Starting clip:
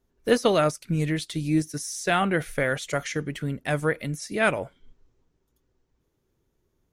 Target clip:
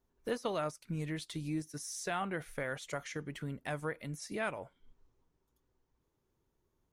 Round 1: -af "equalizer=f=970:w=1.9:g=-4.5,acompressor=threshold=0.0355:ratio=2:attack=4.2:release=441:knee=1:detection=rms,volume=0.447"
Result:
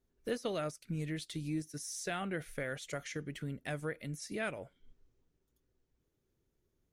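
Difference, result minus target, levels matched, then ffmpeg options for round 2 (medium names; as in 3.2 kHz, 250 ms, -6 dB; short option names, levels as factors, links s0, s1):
1 kHz band -4.0 dB
-af "equalizer=f=970:w=1.9:g=6,acompressor=threshold=0.0355:ratio=2:attack=4.2:release=441:knee=1:detection=rms,volume=0.447"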